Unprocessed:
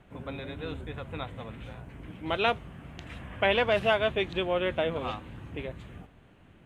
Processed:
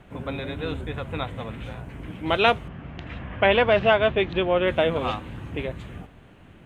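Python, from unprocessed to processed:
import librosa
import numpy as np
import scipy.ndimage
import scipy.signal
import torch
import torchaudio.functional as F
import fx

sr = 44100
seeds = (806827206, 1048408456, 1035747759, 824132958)

y = fx.air_absorb(x, sr, metres=180.0, at=(2.68, 4.68))
y = y * librosa.db_to_amplitude(7.0)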